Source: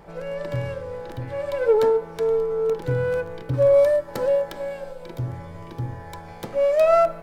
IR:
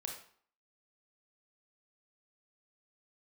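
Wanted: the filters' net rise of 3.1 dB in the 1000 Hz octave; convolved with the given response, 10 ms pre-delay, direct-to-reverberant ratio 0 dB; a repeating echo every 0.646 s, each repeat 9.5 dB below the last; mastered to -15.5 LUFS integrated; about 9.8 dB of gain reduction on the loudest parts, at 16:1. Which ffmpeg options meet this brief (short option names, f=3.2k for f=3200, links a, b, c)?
-filter_complex "[0:a]equalizer=f=1k:t=o:g=5,acompressor=threshold=-21dB:ratio=16,aecho=1:1:646|1292|1938|2584:0.335|0.111|0.0365|0.012,asplit=2[a][b];[1:a]atrim=start_sample=2205,adelay=10[c];[b][c]afir=irnorm=-1:irlink=0,volume=1.5dB[d];[a][d]amix=inputs=2:normalize=0,volume=10dB"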